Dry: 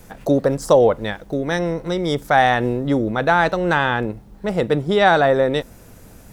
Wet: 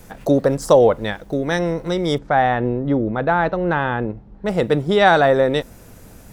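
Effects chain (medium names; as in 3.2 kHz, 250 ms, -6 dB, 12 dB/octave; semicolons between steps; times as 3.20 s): 2.18–4.46 s: tape spacing loss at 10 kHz 31 dB; trim +1 dB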